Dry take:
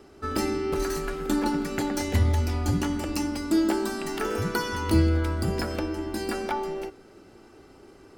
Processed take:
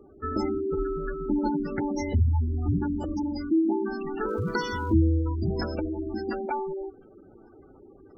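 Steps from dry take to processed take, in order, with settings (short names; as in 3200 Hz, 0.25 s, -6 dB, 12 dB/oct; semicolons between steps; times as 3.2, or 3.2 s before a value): spectral gate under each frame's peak -15 dB strong; 4.28–4.93 crackle 430/s -48 dBFS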